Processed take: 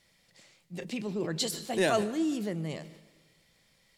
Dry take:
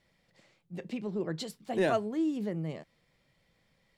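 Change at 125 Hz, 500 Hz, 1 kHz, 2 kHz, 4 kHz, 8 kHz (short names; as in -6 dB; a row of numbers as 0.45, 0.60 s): +1.0, +1.0, +1.5, +4.0, +9.0, +13.0 dB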